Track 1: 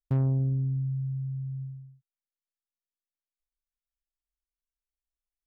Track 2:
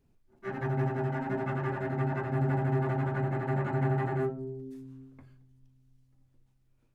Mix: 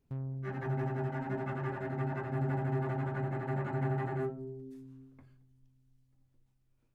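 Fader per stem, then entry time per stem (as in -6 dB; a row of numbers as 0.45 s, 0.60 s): -13.5 dB, -4.5 dB; 0.00 s, 0.00 s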